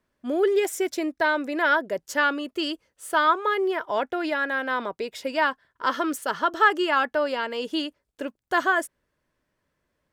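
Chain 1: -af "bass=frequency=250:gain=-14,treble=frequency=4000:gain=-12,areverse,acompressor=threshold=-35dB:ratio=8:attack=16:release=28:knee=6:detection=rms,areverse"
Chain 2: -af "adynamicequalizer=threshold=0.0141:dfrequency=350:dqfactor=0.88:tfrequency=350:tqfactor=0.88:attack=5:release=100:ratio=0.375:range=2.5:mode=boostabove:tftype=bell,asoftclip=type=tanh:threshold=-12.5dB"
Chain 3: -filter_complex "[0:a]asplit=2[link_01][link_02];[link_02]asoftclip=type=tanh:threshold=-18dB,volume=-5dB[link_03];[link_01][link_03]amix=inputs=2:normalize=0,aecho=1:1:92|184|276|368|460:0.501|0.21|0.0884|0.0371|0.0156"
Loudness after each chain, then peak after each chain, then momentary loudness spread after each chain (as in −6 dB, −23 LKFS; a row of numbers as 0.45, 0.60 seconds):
−36.5, −24.0, −20.5 LKFS; −23.0, −13.0, −5.0 dBFS; 5, 8, 9 LU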